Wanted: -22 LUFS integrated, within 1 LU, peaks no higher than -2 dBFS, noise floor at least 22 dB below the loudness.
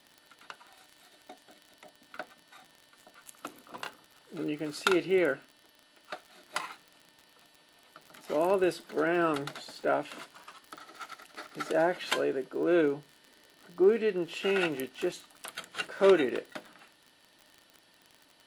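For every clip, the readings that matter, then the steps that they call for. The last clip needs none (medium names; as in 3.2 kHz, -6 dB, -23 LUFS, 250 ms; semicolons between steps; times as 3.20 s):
tick rate 43 per s; loudness -29.5 LUFS; peak level -8.5 dBFS; loudness target -22.0 LUFS
-> de-click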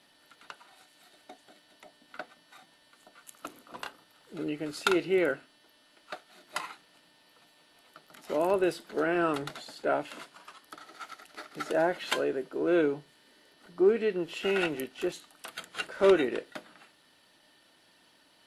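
tick rate 0.11 per s; loudness -29.5 LUFS; peak level -8.5 dBFS; loudness target -22.0 LUFS
-> trim +7.5 dB; peak limiter -2 dBFS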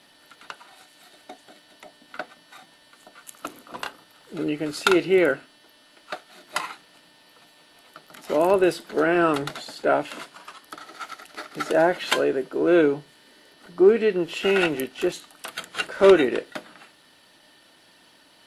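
loudness -22.0 LUFS; peak level -2.0 dBFS; noise floor -56 dBFS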